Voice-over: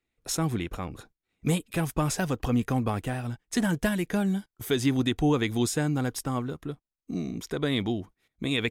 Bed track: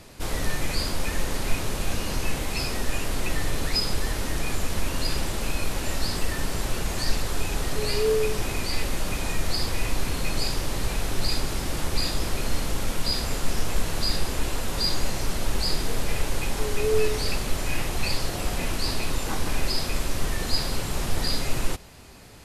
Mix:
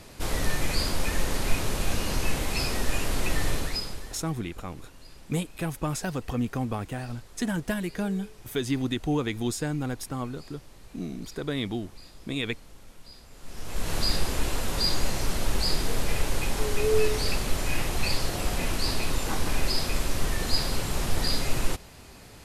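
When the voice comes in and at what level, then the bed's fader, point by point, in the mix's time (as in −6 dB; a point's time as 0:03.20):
3.85 s, −3.0 dB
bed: 0:03.52 0 dB
0:04.42 −23 dB
0:13.31 −23 dB
0:13.92 −0.5 dB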